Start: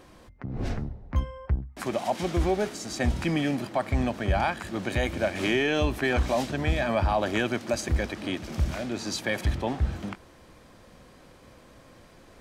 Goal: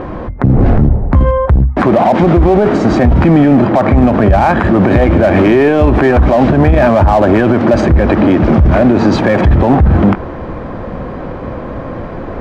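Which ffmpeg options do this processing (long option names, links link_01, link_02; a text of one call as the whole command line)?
ffmpeg -i in.wav -filter_complex "[0:a]lowpass=1200,asplit=2[link_01][link_02];[link_02]asoftclip=type=hard:threshold=-33dB,volume=-3dB[link_03];[link_01][link_03]amix=inputs=2:normalize=0,alimiter=level_in=27dB:limit=-1dB:release=50:level=0:latency=1,volume=-1dB" out.wav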